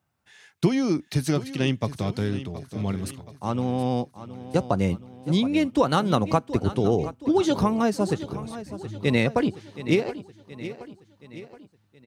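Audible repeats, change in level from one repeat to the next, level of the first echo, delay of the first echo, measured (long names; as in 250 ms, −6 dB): 4, −6.0 dB, −14.0 dB, 723 ms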